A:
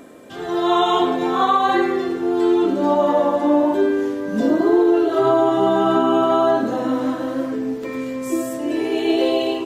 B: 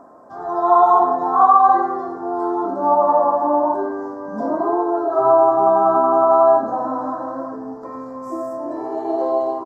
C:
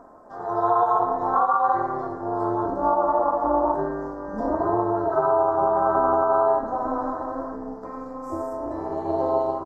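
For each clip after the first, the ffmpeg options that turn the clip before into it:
-af "firequalizer=gain_entry='entry(480,0);entry(690,14);entry(1100,14);entry(2600,-30);entry(5000,-5);entry(9000,-14)':delay=0.05:min_phase=1,volume=0.422"
-af "alimiter=limit=0.376:level=0:latency=1:release=314,tremolo=f=240:d=0.71"

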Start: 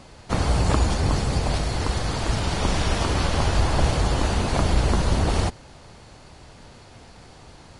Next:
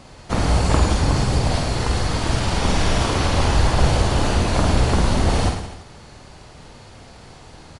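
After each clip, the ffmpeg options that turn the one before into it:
-af "aecho=1:1:50|107.5|173.6|249.7|337.1:0.631|0.398|0.251|0.158|0.1,volume=1.19"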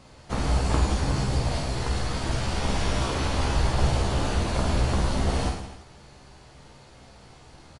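-filter_complex "[0:a]asplit=2[s0][s1];[s1]adelay=15,volume=0.531[s2];[s0][s2]amix=inputs=2:normalize=0,volume=0.398"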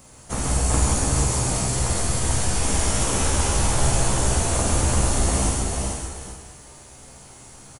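-filter_complex "[0:a]asplit=2[s0][s1];[s1]aecho=0:1:443:0.531[s2];[s0][s2]amix=inputs=2:normalize=0,aexciter=amount=8:drive=3.2:freq=6300,asplit=2[s3][s4];[s4]aecho=0:1:131|383|589:0.501|0.398|0.133[s5];[s3][s5]amix=inputs=2:normalize=0"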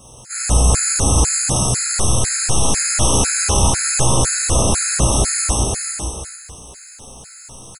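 -filter_complex "[0:a]equalizer=f=6300:t=o:w=1.3:g=5,asplit=2[s0][s1];[s1]adelay=33,volume=0.75[s2];[s0][s2]amix=inputs=2:normalize=0,afftfilt=real='re*gt(sin(2*PI*2*pts/sr)*(1-2*mod(floor(b*sr/1024/1300),2)),0)':imag='im*gt(sin(2*PI*2*pts/sr)*(1-2*mod(floor(b*sr/1024/1300),2)),0)':win_size=1024:overlap=0.75,volume=1.78"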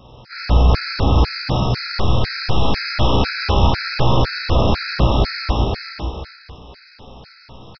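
-af "aresample=11025,aresample=44100,volume=1.19"

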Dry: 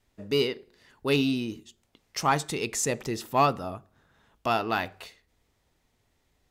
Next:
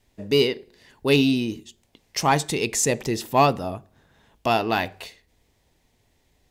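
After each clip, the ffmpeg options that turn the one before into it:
-af "equalizer=f=1300:w=3.4:g=-8,volume=2"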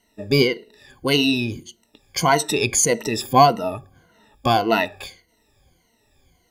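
-af "afftfilt=real='re*pow(10,20/40*sin(2*PI*(1.9*log(max(b,1)*sr/1024/100)/log(2)-(-1.7)*(pts-256)/sr)))':imag='im*pow(10,20/40*sin(2*PI*(1.9*log(max(b,1)*sr/1024/100)/log(2)-(-1.7)*(pts-256)/sr)))':win_size=1024:overlap=0.75"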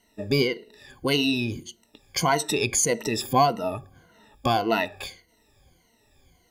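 -af "acompressor=threshold=0.0447:ratio=1.5"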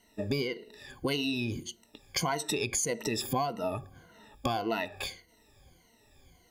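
-af "acompressor=threshold=0.0398:ratio=5"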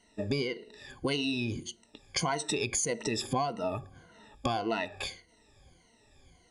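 -af "aresample=22050,aresample=44100"

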